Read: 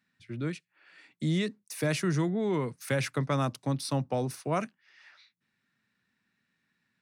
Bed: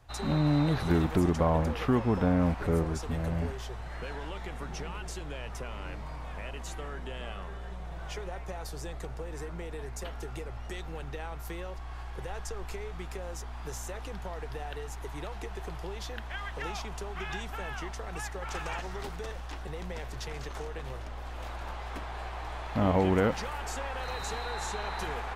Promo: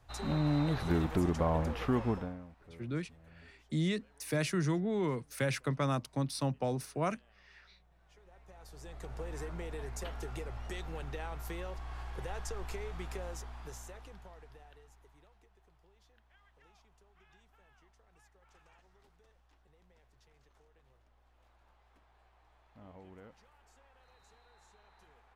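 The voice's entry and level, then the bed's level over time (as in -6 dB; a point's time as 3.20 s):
2.50 s, -3.5 dB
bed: 2.10 s -4.5 dB
2.48 s -27 dB
8.04 s -27 dB
9.22 s -2 dB
13.21 s -2 dB
15.53 s -28.5 dB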